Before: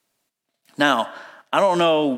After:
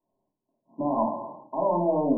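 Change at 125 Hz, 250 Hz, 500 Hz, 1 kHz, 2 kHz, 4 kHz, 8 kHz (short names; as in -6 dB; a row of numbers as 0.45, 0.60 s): -2.5 dB, -3.5 dB, -6.0 dB, -7.0 dB, under -40 dB, under -40 dB, under -40 dB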